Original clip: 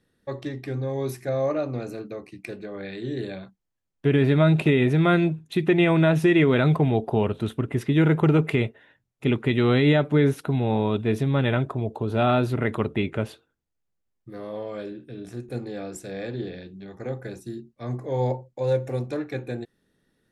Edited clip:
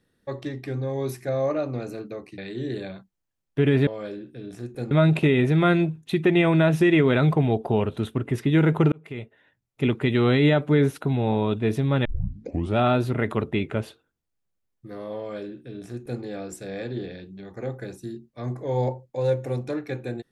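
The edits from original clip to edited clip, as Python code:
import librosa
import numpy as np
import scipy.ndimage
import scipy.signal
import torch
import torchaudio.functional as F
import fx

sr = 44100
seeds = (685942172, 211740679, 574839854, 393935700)

y = fx.edit(x, sr, fx.cut(start_s=2.38, length_s=0.47),
    fx.fade_in_span(start_s=8.35, length_s=0.94),
    fx.tape_start(start_s=11.48, length_s=0.72),
    fx.duplicate(start_s=14.61, length_s=1.04, to_s=4.34), tone=tone)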